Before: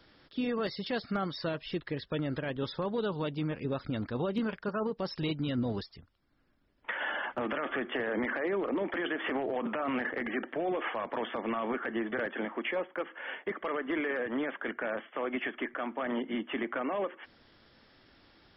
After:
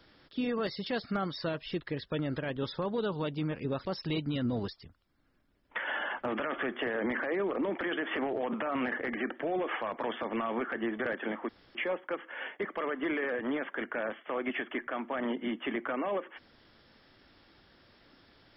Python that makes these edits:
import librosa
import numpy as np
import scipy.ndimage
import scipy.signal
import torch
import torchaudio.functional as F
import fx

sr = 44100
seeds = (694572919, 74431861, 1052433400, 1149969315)

y = fx.edit(x, sr, fx.cut(start_s=3.86, length_s=1.13),
    fx.insert_room_tone(at_s=12.62, length_s=0.26), tone=tone)